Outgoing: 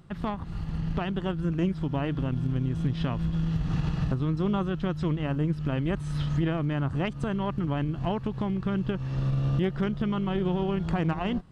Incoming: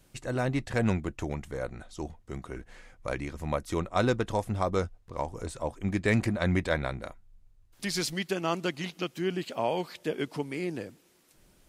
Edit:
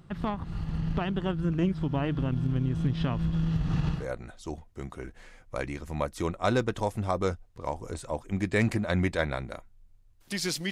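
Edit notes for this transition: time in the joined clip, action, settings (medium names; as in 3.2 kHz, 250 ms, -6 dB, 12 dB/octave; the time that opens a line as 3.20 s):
outgoing
3.99 s: go over to incoming from 1.51 s, crossfade 0.14 s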